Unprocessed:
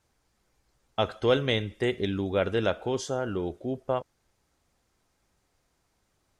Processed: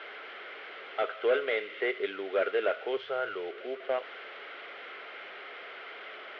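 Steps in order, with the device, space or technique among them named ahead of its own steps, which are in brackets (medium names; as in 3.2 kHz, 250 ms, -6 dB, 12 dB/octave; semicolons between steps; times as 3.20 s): digital answering machine (band-pass 400–3100 Hz; one-bit delta coder 32 kbps, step -40 dBFS; cabinet simulation 410–3300 Hz, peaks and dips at 420 Hz +9 dB, 630 Hz +4 dB, 920 Hz -7 dB, 1.4 kHz +9 dB, 2.1 kHz +9 dB, 3.1 kHz +8 dB); 2.97–3.49 s: resonant low shelf 160 Hz +13.5 dB, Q 3; trim -2.5 dB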